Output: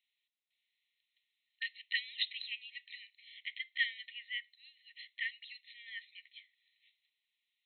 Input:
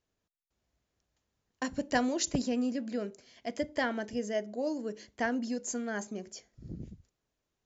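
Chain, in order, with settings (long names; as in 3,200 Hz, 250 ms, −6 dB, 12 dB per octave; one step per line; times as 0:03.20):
linear-phase brick-wall band-pass 1,800–4,200 Hz
spectral tilt +2.5 dB per octave
level +3.5 dB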